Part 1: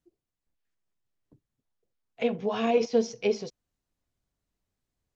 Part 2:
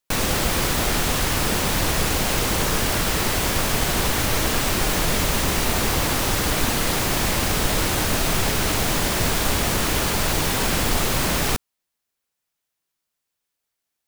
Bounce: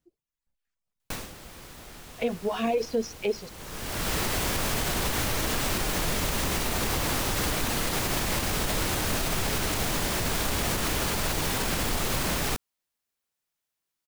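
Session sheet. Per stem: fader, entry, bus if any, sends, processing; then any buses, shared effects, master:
+1.5 dB, 0.00 s, no send, reverb removal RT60 1.7 s
-4.0 dB, 1.00 s, no send, auto duck -20 dB, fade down 0.30 s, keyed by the first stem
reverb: off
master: limiter -17.5 dBFS, peak gain reduction 6 dB

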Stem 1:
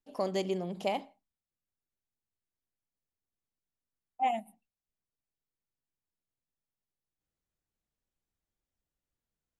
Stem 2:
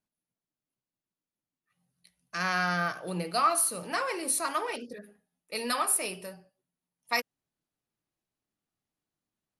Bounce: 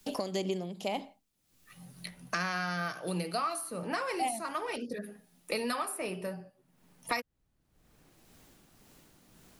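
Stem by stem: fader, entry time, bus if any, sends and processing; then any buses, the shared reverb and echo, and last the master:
+0.5 dB, 0.00 s, no send, tremolo 1.9 Hz, depth 69%
-5.5 dB, 0.00 s, no send, dry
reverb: off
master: low shelf 330 Hz +5.5 dB; three-band squash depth 100%

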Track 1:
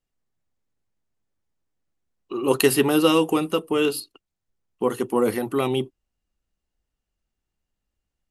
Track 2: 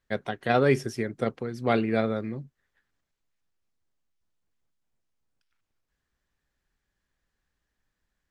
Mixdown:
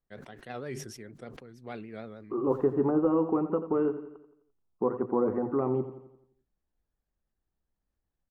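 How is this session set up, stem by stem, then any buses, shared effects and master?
-2.5 dB, 0.00 s, no send, echo send -13 dB, de-esser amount 75%; inverse Chebyshev low-pass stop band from 4200 Hz, stop band 60 dB
-17.5 dB, 0.00 s, no send, no echo send, vibrato 6.5 Hz 78 cents; sustainer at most 45 dB/s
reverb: off
echo: feedback echo 86 ms, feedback 49%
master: compressor 1.5:1, threshold -27 dBFS, peak gain reduction 4.5 dB

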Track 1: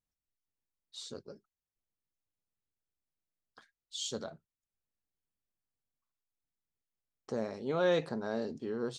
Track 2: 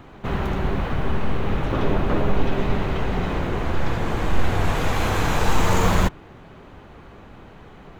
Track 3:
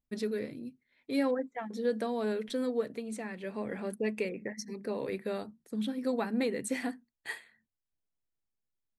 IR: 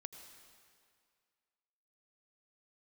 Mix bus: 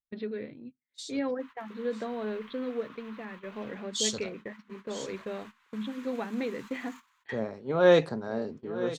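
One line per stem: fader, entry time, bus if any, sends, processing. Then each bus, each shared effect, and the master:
+1.5 dB, 0.00 s, no send, echo send -15 dB, three-band expander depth 100%
-15.0 dB, 1.15 s, no send, no echo send, elliptic high-pass 1000 Hz, stop band 40 dB; limiter -28.5 dBFS, peak gain reduction 13 dB; auto duck -6 dB, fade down 0.25 s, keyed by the first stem
-2.0 dB, 0.00 s, no send, no echo send, steep low-pass 3900 Hz 48 dB/oct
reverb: off
echo: echo 0.952 s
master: gate -44 dBFS, range -16 dB

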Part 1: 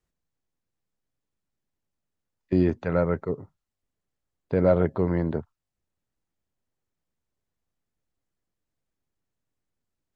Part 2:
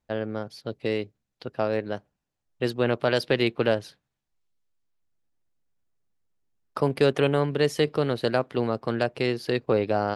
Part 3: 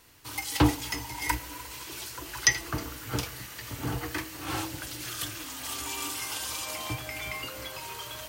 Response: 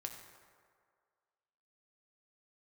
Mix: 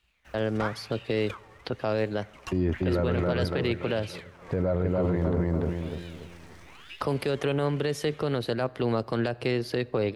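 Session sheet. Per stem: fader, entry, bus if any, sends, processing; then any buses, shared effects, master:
+2.5 dB, 0.00 s, no send, echo send -3 dB, dry
-1.5 dB, 0.25 s, send -16 dB, no echo send, three-band squash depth 70%
-9.5 dB, 0.00 s, send -7.5 dB, no echo send, median filter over 15 samples; LPF 10000 Hz 12 dB/oct; ring modulator with a swept carrier 1800 Hz, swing 55%, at 1 Hz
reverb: on, RT60 2.0 s, pre-delay 4 ms
echo: feedback echo 0.288 s, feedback 37%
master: bell 62 Hz +12 dB 0.94 oct; limiter -17 dBFS, peak gain reduction 13.5 dB

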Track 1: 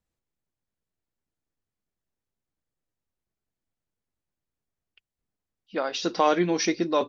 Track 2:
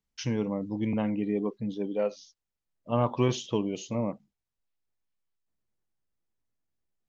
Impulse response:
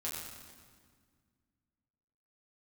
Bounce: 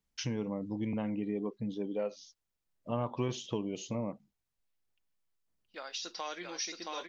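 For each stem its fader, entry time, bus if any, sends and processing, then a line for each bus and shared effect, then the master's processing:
-14.5 dB, 0.00 s, no send, echo send -3.5 dB, gate -48 dBFS, range -15 dB; tilt +4.5 dB/oct
+1.5 dB, 0.00 s, no send, no echo send, dry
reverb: off
echo: echo 0.672 s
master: compressor 2:1, threshold -37 dBFS, peak gain reduction 10.5 dB

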